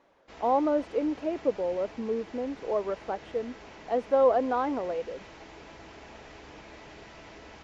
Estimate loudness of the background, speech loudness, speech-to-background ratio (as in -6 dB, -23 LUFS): -47.5 LUFS, -29.0 LUFS, 18.5 dB